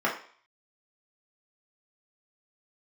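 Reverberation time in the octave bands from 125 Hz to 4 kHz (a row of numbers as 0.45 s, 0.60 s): 0.30 s, 0.40 s, 0.45 s, 0.50 s, 0.50 s, 0.55 s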